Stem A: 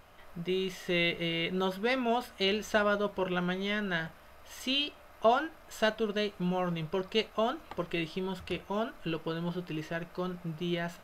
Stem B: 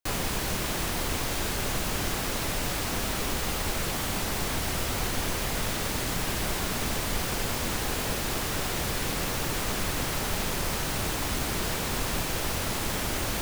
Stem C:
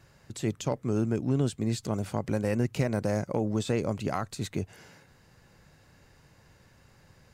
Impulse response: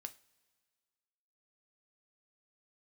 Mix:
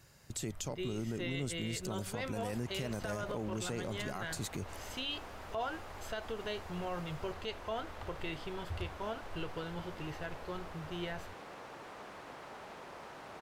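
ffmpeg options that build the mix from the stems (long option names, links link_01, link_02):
-filter_complex "[0:a]lowshelf=frequency=140:width_type=q:width=3:gain=11,adelay=300,volume=-5.5dB[link_01];[1:a]bandpass=frequency=810:width_type=q:width=0.85:csg=0,adelay=2300,volume=-12.5dB[link_02];[2:a]highshelf=frequency=5000:gain=11.5,volume=-4.5dB[link_03];[link_01][link_02][link_03]amix=inputs=3:normalize=0,alimiter=level_in=4.5dB:limit=-24dB:level=0:latency=1:release=76,volume=-4.5dB"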